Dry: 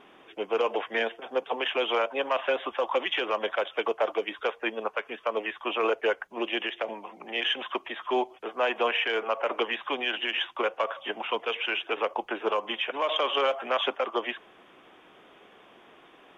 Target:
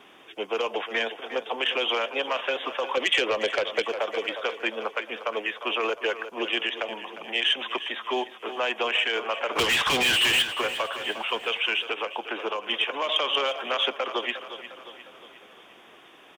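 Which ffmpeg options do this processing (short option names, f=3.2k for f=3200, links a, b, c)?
-filter_complex "[0:a]asettb=1/sr,asplit=3[a][b][c];[a]atrim=end=2.974[d];[b]atrim=start=2.97:end=3.82,asetpts=PTS-STARTPTS,afade=t=in:d=0.004:c=qsin,afade=t=out:st=0.846:d=0.004:c=qsin,equalizer=f=250:t=o:w=1:g=5,equalizer=f=500:t=o:w=1:g=11,equalizer=f=2k:t=o:w=1:g=8[e];[c]atrim=start=3.816[f];[d][e]acrossfade=d=0.004:c1=hsin:c2=qsin[g];[g][f]acrossfade=d=0.004:c1=qsin:c2=hsin,asoftclip=type=tanh:threshold=-11.5dB,highshelf=f=2.8k:g=11,asplit=3[h][i][j];[h]afade=t=out:st=9.55:d=0.02[k];[i]asplit=2[l][m];[m]highpass=f=720:p=1,volume=31dB,asoftclip=type=tanh:threshold=-11.5dB[n];[l][n]amix=inputs=2:normalize=0,lowpass=f=3.7k:p=1,volume=-6dB,afade=t=in:st=9.55:d=0.02,afade=t=out:st=10.41:d=0.02[o];[j]afade=t=in:st=10.41:d=0.02[p];[k][o][p]amix=inputs=3:normalize=0,aecho=1:1:355|710|1065|1420|1775:0.211|0.11|0.0571|0.0297|0.0155,asettb=1/sr,asplit=3[q][r][s];[q]atrim=end=11.914[t];[r]atrim=start=11.91:end=12.69,asetpts=PTS-STARTPTS,afade=t=in:d=0.004:c=qsin,afade=t=out:st=0.776:d=0.004:c=qsin,acompressor=threshold=-27dB:ratio=2.5[u];[s]atrim=start=12.686[v];[t][u]acrossfade=d=0.004:c1=hsin:c2=qsin[w];[w][v]acrossfade=d=0.004:c1=qsin:c2=hsin,highpass=40,acrossover=split=260|3000[x][y][z];[y]acompressor=threshold=-24dB:ratio=6[aa];[x][aa][z]amix=inputs=3:normalize=0"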